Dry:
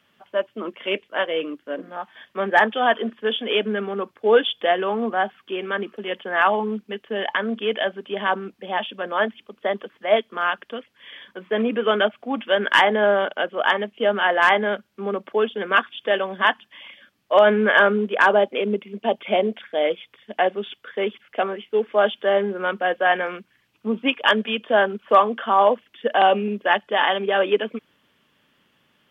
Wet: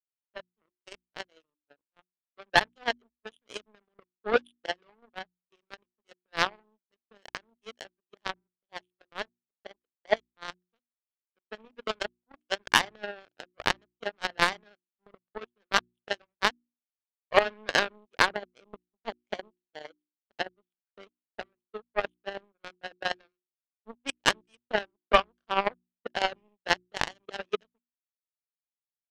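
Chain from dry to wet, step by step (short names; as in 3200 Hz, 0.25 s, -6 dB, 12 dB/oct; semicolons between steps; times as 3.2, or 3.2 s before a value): power-law curve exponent 3; notches 60/120/180/240/300/360 Hz; transient shaper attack +12 dB, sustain -1 dB; gain -9 dB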